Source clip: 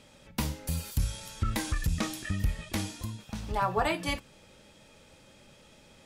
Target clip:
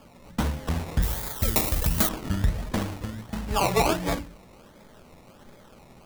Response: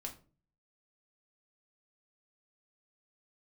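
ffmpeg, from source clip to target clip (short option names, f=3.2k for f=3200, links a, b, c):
-filter_complex "[0:a]asplit=2[a][b];[1:a]atrim=start_sample=2205[c];[b][c]afir=irnorm=-1:irlink=0,volume=4dB[d];[a][d]amix=inputs=2:normalize=0,acrusher=samples=22:mix=1:aa=0.000001:lfo=1:lforange=13.2:lforate=1.4,asettb=1/sr,asplit=3[e][f][g];[e]atrim=end=1.024[h];[f]atrim=start=1.02:end=2.09,asetpts=PTS-STARTPTS,afade=t=in:d=0.004:c=qsin,afade=t=out:st=1.066:d=0.004:c=qsin,aemphasis=mode=production:type=75fm[i];[g]atrim=start=2.086[j];[h][i]acrossfade=d=0.004:c1=hsin:c2=qsin[k];[k][j]acrossfade=d=0.004:c1=qsin:c2=hsin,volume=-1dB"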